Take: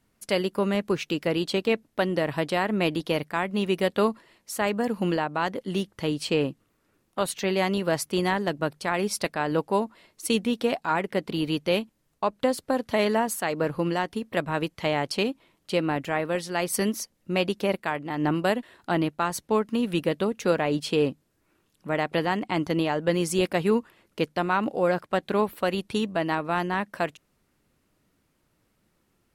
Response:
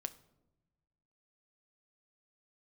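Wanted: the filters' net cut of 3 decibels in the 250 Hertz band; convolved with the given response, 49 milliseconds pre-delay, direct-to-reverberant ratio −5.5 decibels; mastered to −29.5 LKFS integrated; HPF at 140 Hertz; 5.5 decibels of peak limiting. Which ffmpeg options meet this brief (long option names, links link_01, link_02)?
-filter_complex "[0:a]highpass=140,equalizer=frequency=250:width_type=o:gain=-3.5,alimiter=limit=-15dB:level=0:latency=1,asplit=2[link_01][link_02];[1:a]atrim=start_sample=2205,adelay=49[link_03];[link_02][link_03]afir=irnorm=-1:irlink=0,volume=7.5dB[link_04];[link_01][link_04]amix=inputs=2:normalize=0,volume=-6.5dB"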